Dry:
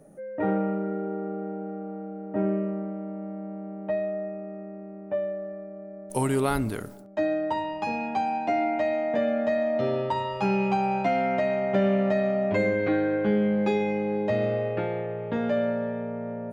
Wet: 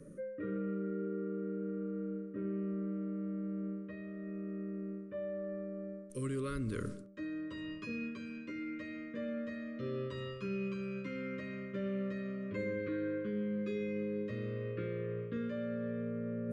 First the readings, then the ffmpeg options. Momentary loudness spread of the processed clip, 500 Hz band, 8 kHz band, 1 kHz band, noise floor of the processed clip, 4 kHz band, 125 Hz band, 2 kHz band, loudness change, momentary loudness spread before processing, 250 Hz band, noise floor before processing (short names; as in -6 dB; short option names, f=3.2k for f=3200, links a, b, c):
6 LU, -14.0 dB, -15.0 dB, -25.5 dB, -47 dBFS, -12.0 dB, -8.5 dB, -13.0 dB, -12.5 dB, 12 LU, -9.5 dB, -41 dBFS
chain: -af "lowshelf=f=250:g=6.5,bandreject=f=50:t=h:w=6,bandreject=f=100:t=h:w=6,bandreject=f=150:t=h:w=6,bandreject=f=200:t=h:w=6,areverse,acompressor=threshold=-34dB:ratio=6,areverse,asuperstop=centerf=770:order=20:qfactor=1.8,aresample=22050,aresample=44100,volume=-1dB"